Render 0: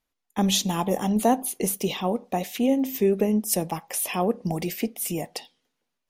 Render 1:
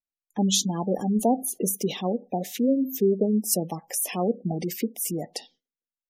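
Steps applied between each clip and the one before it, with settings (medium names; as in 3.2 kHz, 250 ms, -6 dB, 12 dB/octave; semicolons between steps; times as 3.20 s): fifteen-band graphic EQ 100 Hz -3 dB, 1 kHz -7 dB, 2.5 kHz -4 dB, 6.3 kHz +3 dB; spectral gate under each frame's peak -20 dB strong; gate with hold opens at -52 dBFS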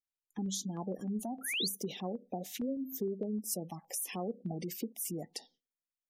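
compression 2.5:1, threshold -29 dBFS, peak gain reduction 8.5 dB; painted sound rise, 1.41–1.68 s, 1.3–4.9 kHz -27 dBFS; step-sequenced notch 6.5 Hz 470–3400 Hz; trim -6.5 dB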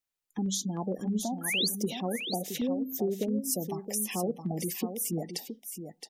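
delay 669 ms -8 dB; trim +5.5 dB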